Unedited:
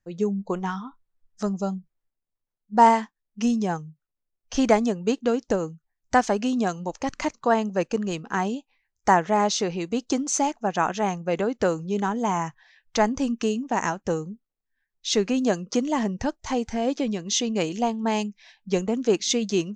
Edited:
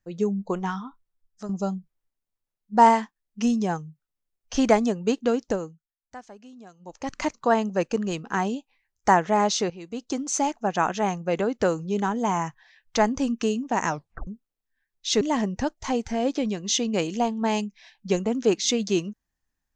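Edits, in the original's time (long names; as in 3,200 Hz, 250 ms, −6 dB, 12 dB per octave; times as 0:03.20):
0:00.80–0:01.49: fade out, to −10.5 dB
0:05.42–0:07.23: duck −22 dB, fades 0.44 s
0:09.70–0:10.53: fade in, from −14.5 dB
0:13.89: tape stop 0.38 s
0:15.21–0:15.83: remove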